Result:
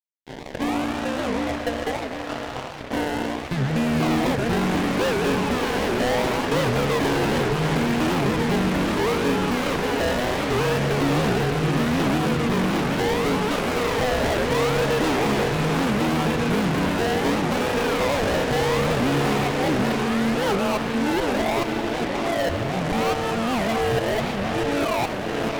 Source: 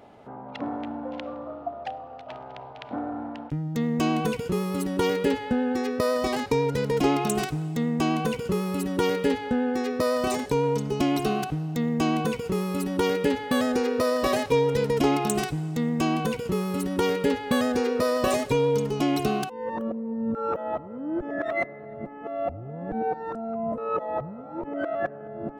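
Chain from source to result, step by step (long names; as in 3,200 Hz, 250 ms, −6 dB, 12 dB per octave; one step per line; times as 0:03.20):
low-shelf EQ 150 Hz +5.5 dB
sample-and-hold swept by an LFO 29×, swing 60% 0.72 Hz
inverse Chebyshev low-pass filter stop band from 6,300 Hz, stop band 40 dB
feedback delay with all-pass diffusion 664 ms, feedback 44%, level −7 dB
fuzz pedal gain 32 dB, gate −38 dBFS
mains-hum notches 50/100/150/200/250 Hz
on a send at −8 dB: convolution reverb RT60 3.5 s, pre-delay 67 ms
on the sum: wow of a warped record 78 rpm, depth 250 cents
level −6.5 dB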